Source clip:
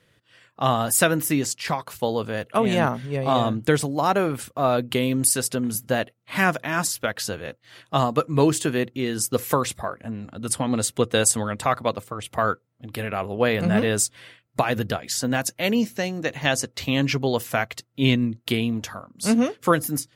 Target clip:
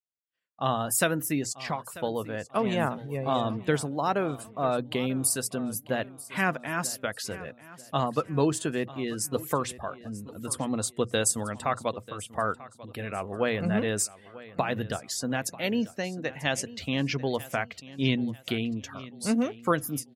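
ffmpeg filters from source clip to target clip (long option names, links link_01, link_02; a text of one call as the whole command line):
ffmpeg -i in.wav -filter_complex "[0:a]bandreject=frequency=60:width_type=h:width=6,bandreject=frequency=120:width_type=h:width=6,agate=range=-33dB:threshold=-44dB:ratio=3:detection=peak,afftdn=noise_reduction=14:noise_floor=-39,asplit=2[link_01][link_02];[link_02]aecho=0:1:941|1882|2823:0.126|0.0453|0.0163[link_03];[link_01][link_03]amix=inputs=2:normalize=0,volume=-6dB" out.wav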